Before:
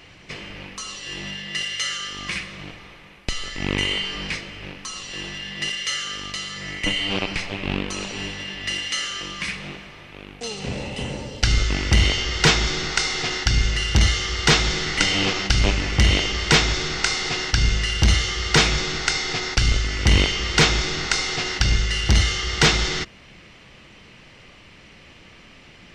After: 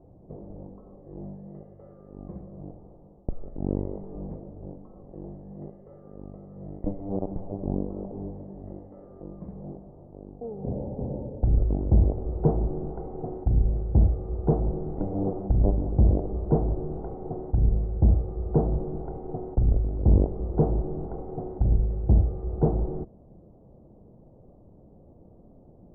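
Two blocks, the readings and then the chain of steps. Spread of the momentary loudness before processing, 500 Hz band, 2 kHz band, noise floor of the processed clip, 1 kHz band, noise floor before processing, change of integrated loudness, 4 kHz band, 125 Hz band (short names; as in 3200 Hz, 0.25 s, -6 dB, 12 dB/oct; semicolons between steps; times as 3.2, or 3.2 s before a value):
15 LU, -1.5 dB, under -40 dB, -53 dBFS, -11.5 dB, -48 dBFS, -5.5 dB, under -40 dB, -1.5 dB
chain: steep low-pass 730 Hz 36 dB/oct; gain -1.5 dB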